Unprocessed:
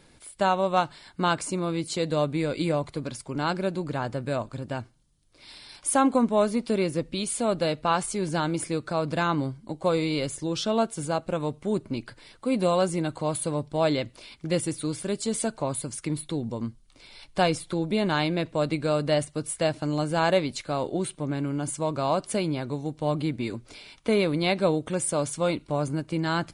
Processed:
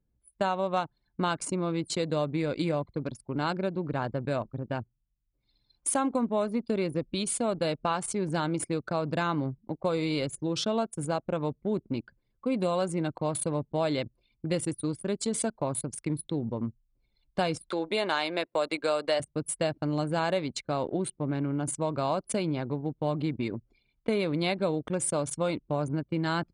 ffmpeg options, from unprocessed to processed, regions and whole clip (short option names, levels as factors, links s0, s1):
-filter_complex "[0:a]asettb=1/sr,asplit=3[s0][s1][s2];[s0]atrim=end=17.684[s3];[s1]atrim=start=17.68:end=19.2,asetpts=PTS-STARTPTS,afade=t=in:d=0.004:c=qsin,afade=t=out:st=1.516:d=0.004:c=qsin,highpass=500,acontrast=29[s4];[s2]atrim=start=19.196[s5];[s3][s4]acrossfade=d=0.004:c1=hsin:c2=qsin[s6];[s6][s5]acrossfade=d=0.004:c1=qsin:c2=hsin,highpass=45,anlmdn=6.31,acompressor=threshold=0.0562:ratio=3"